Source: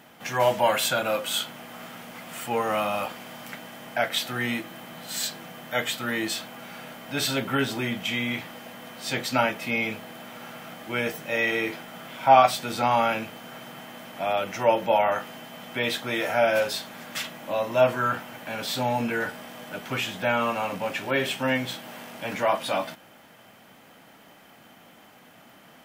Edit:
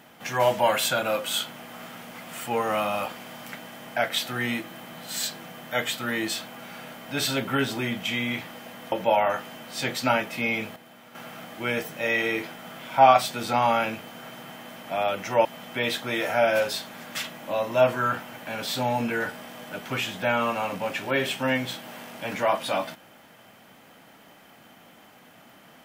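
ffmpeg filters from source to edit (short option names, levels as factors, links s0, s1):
-filter_complex "[0:a]asplit=6[s0][s1][s2][s3][s4][s5];[s0]atrim=end=8.922[s6];[s1]atrim=start=14.738:end=15.452[s7];[s2]atrim=start=8.918:end=10.052[s8];[s3]atrim=start=10.048:end=10.442,asetpts=PTS-STARTPTS,volume=0.376[s9];[s4]atrim=start=10.438:end=14.742[s10];[s5]atrim=start=15.448[s11];[s6][s7]acrossfade=d=0.004:c1=hsin:c2=hsin[s12];[s12][s8]acrossfade=d=0.004:c1=hsin:c2=hsin[s13];[s13][s9]acrossfade=d=0.004:c1=hsin:c2=hsin[s14];[s14][s10]acrossfade=d=0.004:c1=hsin:c2=hsin[s15];[s15][s11]acrossfade=d=0.004:c1=hsin:c2=hsin"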